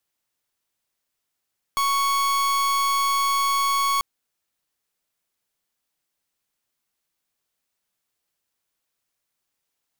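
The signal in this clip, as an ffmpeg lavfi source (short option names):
-f lavfi -i "aevalsrc='0.0841*(2*lt(mod(1110*t,1),0.42)-1)':d=2.24:s=44100"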